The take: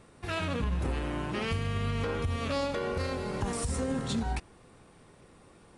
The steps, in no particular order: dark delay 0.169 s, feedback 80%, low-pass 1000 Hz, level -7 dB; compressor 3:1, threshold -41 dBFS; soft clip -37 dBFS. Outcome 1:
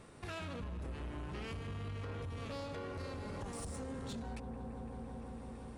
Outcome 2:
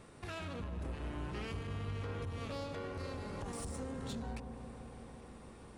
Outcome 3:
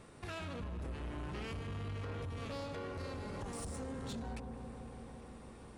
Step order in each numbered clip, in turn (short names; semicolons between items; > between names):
dark delay > compressor > soft clip; compressor > soft clip > dark delay; compressor > dark delay > soft clip